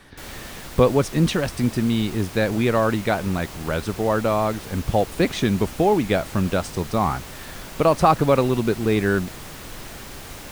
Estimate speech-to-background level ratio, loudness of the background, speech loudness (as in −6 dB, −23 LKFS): 15.5 dB, −37.0 LKFS, −21.5 LKFS